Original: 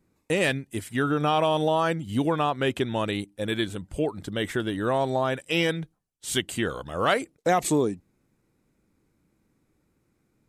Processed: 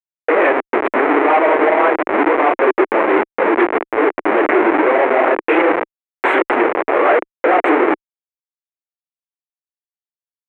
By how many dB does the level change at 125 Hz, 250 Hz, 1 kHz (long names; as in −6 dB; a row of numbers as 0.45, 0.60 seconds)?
below −15 dB, +9.5 dB, +13.0 dB